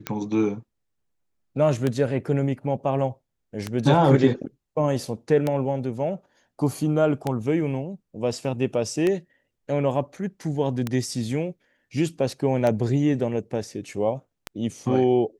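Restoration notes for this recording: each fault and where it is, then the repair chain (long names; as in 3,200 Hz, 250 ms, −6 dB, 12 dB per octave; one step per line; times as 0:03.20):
scratch tick 33 1/3 rpm −11 dBFS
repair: click removal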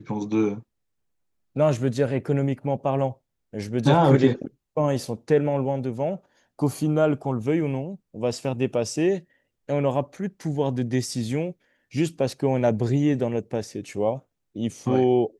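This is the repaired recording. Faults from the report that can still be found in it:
none of them is left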